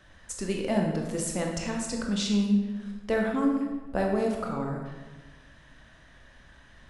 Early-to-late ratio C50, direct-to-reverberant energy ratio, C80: 3.5 dB, 0.5 dB, 5.5 dB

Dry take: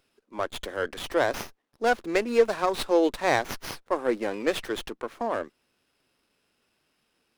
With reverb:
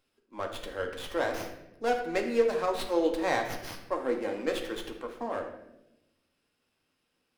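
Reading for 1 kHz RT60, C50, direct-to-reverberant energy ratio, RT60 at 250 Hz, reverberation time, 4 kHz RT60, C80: 0.70 s, 7.0 dB, 2.0 dB, 1.3 s, 0.90 s, 0.65 s, 9.5 dB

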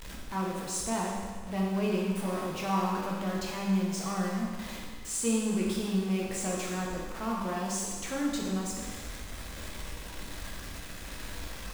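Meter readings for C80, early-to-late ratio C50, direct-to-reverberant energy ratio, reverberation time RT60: 2.5 dB, 0.0 dB, -3.5 dB, 1.6 s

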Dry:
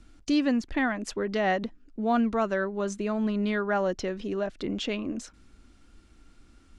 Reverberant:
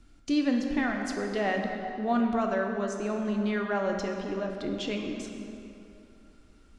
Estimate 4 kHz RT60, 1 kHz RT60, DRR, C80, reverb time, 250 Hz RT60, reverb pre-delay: 2.0 s, 2.9 s, 2.0 dB, 4.5 dB, 2.9 s, 2.8 s, 7 ms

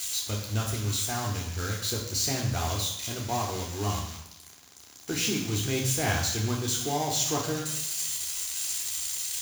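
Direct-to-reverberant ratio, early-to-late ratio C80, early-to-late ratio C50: -3.5 dB, 7.5 dB, 5.0 dB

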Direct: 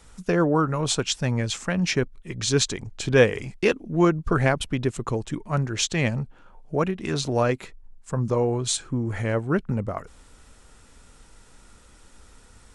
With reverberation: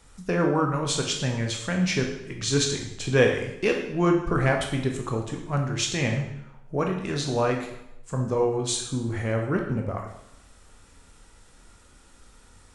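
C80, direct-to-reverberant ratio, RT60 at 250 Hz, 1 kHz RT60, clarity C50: 8.0 dB, 1.5 dB, 0.80 s, 0.85 s, 5.5 dB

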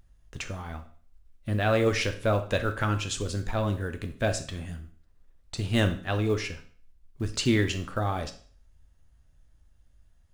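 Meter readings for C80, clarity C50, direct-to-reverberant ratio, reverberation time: 16.5 dB, 12.0 dB, 6.5 dB, 0.45 s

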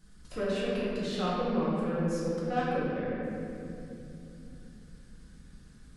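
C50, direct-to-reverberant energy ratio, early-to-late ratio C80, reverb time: -3.5 dB, -9.0 dB, -1.5 dB, 2.9 s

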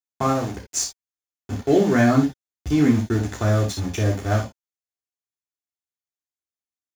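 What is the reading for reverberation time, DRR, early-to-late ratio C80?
no single decay rate, -2.0 dB, 17.5 dB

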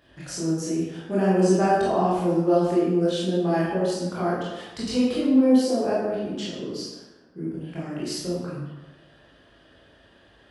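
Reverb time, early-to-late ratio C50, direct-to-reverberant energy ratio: 1.1 s, -0.5 dB, -8.5 dB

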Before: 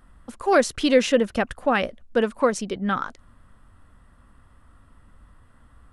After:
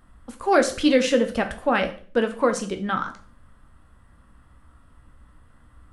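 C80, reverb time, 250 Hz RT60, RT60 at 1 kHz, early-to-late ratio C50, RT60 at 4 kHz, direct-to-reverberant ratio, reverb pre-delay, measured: 17.0 dB, 0.45 s, 0.55 s, 0.40 s, 12.5 dB, 0.40 s, 5.5 dB, 9 ms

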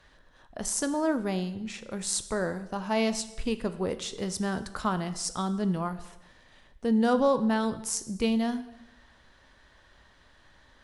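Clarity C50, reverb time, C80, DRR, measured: 14.0 dB, 0.90 s, 16.0 dB, 11.0 dB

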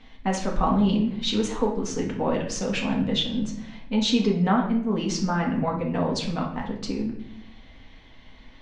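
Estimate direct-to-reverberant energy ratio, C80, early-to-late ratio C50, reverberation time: -2.0 dB, 10.0 dB, 6.5 dB, 0.75 s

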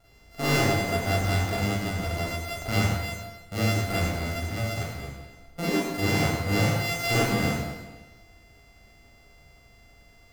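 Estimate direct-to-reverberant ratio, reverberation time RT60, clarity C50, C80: -9.0 dB, 1.2 s, -1.5 dB, 0.5 dB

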